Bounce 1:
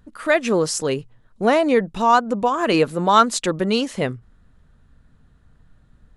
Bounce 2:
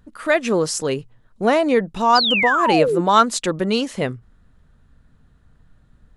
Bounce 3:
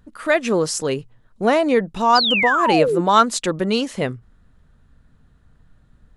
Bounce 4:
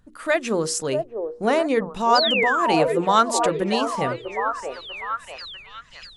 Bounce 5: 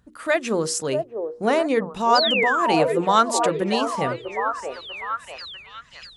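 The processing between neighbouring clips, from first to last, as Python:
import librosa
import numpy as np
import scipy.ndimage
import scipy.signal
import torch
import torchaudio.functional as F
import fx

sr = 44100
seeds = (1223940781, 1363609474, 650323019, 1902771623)

y1 = fx.spec_paint(x, sr, seeds[0], shape='fall', start_s=2.15, length_s=0.86, low_hz=320.0, high_hz=5200.0, level_db=-19.0)
y2 = y1
y3 = fx.peak_eq(y2, sr, hz=8500.0, db=3.5, octaves=0.91)
y3 = fx.hum_notches(y3, sr, base_hz=60, count=8)
y3 = fx.echo_stepped(y3, sr, ms=646, hz=550.0, octaves=0.7, feedback_pct=70, wet_db=-3)
y3 = y3 * librosa.db_to_amplitude(-3.5)
y4 = scipy.signal.sosfilt(scipy.signal.butter(2, 45.0, 'highpass', fs=sr, output='sos'), y3)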